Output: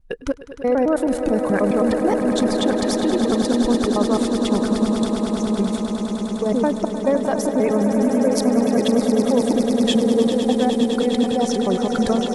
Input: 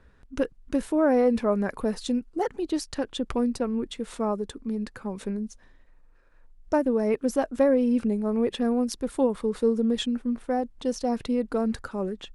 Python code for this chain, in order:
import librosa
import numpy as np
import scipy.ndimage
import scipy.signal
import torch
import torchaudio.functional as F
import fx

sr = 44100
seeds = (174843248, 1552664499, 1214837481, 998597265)

p1 = fx.block_reorder(x, sr, ms=107.0, group=6)
p2 = fx.over_compress(p1, sr, threshold_db=-27.0, ratio=-0.5)
p3 = p1 + (p2 * 10.0 ** (-3.0 / 20.0))
p4 = fx.noise_reduce_blind(p3, sr, reduce_db=8)
p5 = fx.echo_swell(p4, sr, ms=102, loudest=8, wet_db=-11.0)
y = p5 * 10.0 ** (2.0 / 20.0)